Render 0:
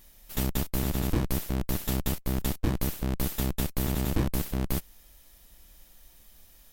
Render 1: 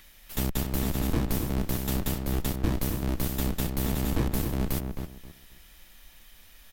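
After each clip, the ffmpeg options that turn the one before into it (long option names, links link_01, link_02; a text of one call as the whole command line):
ffmpeg -i in.wav -filter_complex "[0:a]acrossover=split=390|1400|3500[link_01][link_02][link_03][link_04];[link_03]acompressor=mode=upward:threshold=-51dB:ratio=2.5[link_05];[link_01][link_02][link_05][link_04]amix=inputs=4:normalize=0,asplit=2[link_06][link_07];[link_07]adelay=265,lowpass=frequency=2000:poles=1,volume=-5dB,asplit=2[link_08][link_09];[link_09]adelay=265,lowpass=frequency=2000:poles=1,volume=0.24,asplit=2[link_10][link_11];[link_11]adelay=265,lowpass=frequency=2000:poles=1,volume=0.24[link_12];[link_06][link_08][link_10][link_12]amix=inputs=4:normalize=0" out.wav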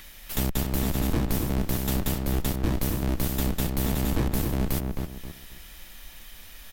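ffmpeg -i in.wav -filter_complex "[0:a]asplit=2[link_01][link_02];[link_02]acompressor=threshold=-36dB:ratio=6,volume=3dB[link_03];[link_01][link_03]amix=inputs=2:normalize=0,asoftclip=type=tanh:threshold=-13.5dB" out.wav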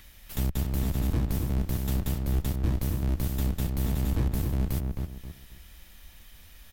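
ffmpeg -i in.wav -af "equalizer=frequency=80:width_type=o:width=2.1:gain=10,volume=-7.5dB" out.wav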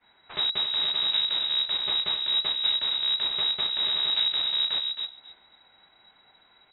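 ffmpeg -i in.wav -af "crystalizer=i=8.5:c=0,agate=range=-33dB:threshold=-26dB:ratio=3:detection=peak,lowpass=frequency=3300:width_type=q:width=0.5098,lowpass=frequency=3300:width_type=q:width=0.6013,lowpass=frequency=3300:width_type=q:width=0.9,lowpass=frequency=3300:width_type=q:width=2.563,afreqshift=-3900" out.wav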